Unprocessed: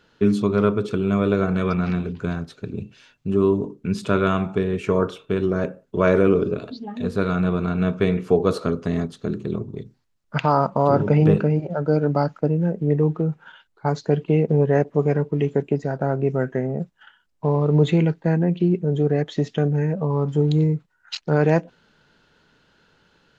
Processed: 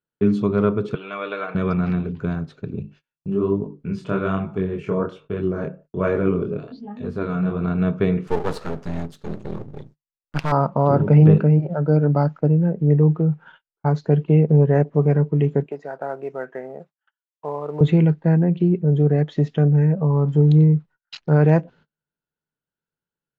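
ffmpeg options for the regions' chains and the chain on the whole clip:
ffmpeg -i in.wav -filter_complex "[0:a]asettb=1/sr,asplit=3[link_01][link_02][link_03];[link_01]atrim=end=0.954[link_04];[link_02]atrim=start=0.95:end=1.55,asetpts=PTS-STARTPTS,afade=type=in:duration=0.004:curve=qsin,afade=type=out:start_time=0.596:duration=0.004:curve=qsin,highpass=710,lowpass=4300,equalizer=frequency=2900:width_type=o:width=1.3:gain=7.5,aecho=1:1:6.5:0.44,atrim=end_sample=26460[link_05];[link_03]atrim=start=1.546[link_06];[link_04][link_05]acrossfade=duration=0.004:curve1=hsin:curve2=qsin[link_07];[link_07][link_06]acrossfade=duration=0.004:curve1=qsin:curve2=hsin,asettb=1/sr,asplit=3[link_08][link_09][link_10];[link_08]atrim=end=2.824[link_11];[link_09]atrim=start=2.82:end=7.61,asetpts=PTS-STARTPTS,afade=type=in:duration=0.004:curve=qsin,afade=type=out:start_time=4.786:duration=0.004:curve=qsin,bandreject=frequency=3800:width=14,flanger=delay=19:depth=7.9:speed=1.2[link_12];[link_10]atrim=start=7.606[link_13];[link_11][link_12]acrossfade=duration=0.004:curve1=hsin:curve2=qsin[link_14];[link_14][link_13]acrossfade=duration=0.004:curve1=qsin:curve2=hsin,asettb=1/sr,asplit=3[link_15][link_16][link_17];[link_15]atrim=end=8.274[link_18];[link_16]atrim=start=8.27:end=10.52,asetpts=PTS-STARTPTS,afade=type=in:duration=0.004:curve=qsin,afade=type=out:start_time=2.246:duration=0.004:curve=qsin,aeval=exprs='max(val(0),0)':channel_layout=same,aemphasis=mode=production:type=75kf[link_19];[link_17]atrim=start=10.516[link_20];[link_18][link_19]acrossfade=duration=0.004:curve1=hsin:curve2=qsin[link_21];[link_21][link_20]acrossfade=duration=0.004:curve1=qsin:curve2=hsin,asettb=1/sr,asplit=3[link_22][link_23][link_24];[link_22]atrim=end=15.664[link_25];[link_23]atrim=start=15.66:end=17.81,asetpts=PTS-STARTPTS,afade=type=in:duration=0.004:curve=qsin,afade=type=out:start_time=2.146:duration=0.004:curve=qsin,highpass=580,highshelf=frequency=2700:gain=-4,acrusher=bits=8:mode=log:mix=0:aa=0.000001[link_26];[link_24]atrim=start=17.806[link_27];[link_25][link_26]acrossfade=duration=0.004:curve1=hsin:curve2=qsin[link_28];[link_28][link_27]acrossfade=duration=0.004:curve1=qsin:curve2=hsin,aemphasis=mode=reproduction:type=75fm,agate=range=-32dB:threshold=-46dB:ratio=16:detection=peak,equalizer=frequency=150:width_type=o:width=0.31:gain=6.5,volume=-1dB" out.wav

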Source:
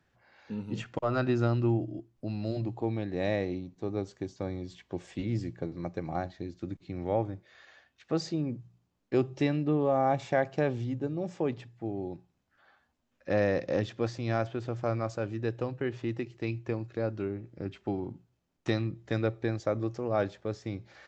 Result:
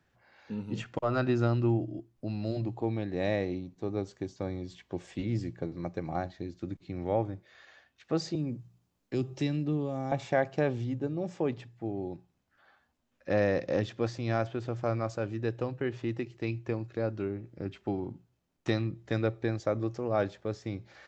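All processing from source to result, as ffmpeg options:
ffmpeg -i in.wav -filter_complex "[0:a]asettb=1/sr,asplit=3[link_01][link_02][link_03];[link_01]atrim=end=8.354[link_04];[link_02]atrim=start=8.35:end=10.12,asetpts=PTS-STARTPTS,afade=type=in:duration=0.004:curve=qsin,afade=type=out:start_time=1.766:duration=0.004:curve=qsin,highshelf=frequency=5700:gain=6.5,acrossover=split=310|3000[link_05][link_06][link_07];[link_06]acompressor=threshold=-42dB:ratio=3:attack=3.2:release=140:knee=2.83:detection=peak[link_08];[link_05][link_08][link_07]amix=inputs=3:normalize=0[link_09];[link_03]atrim=start=10.116[link_10];[link_04][link_09]acrossfade=duration=0.004:curve1=hsin:curve2=qsin[link_11];[link_11][link_10]acrossfade=duration=0.004:curve1=qsin:curve2=hsin" out.wav

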